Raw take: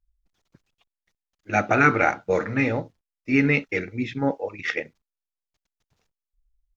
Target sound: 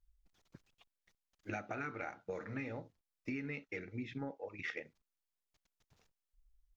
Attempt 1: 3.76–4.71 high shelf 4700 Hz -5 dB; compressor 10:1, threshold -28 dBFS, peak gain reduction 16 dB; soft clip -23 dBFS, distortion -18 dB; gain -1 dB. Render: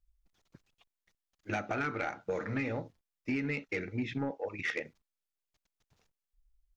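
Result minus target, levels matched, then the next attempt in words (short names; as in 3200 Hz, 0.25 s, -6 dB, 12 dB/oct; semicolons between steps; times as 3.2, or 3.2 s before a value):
compressor: peak gain reduction -9 dB
3.76–4.71 high shelf 4700 Hz -5 dB; compressor 10:1, threshold -38 dBFS, peak gain reduction 25 dB; soft clip -23 dBFS, distortion -32 dB; gain -1 dB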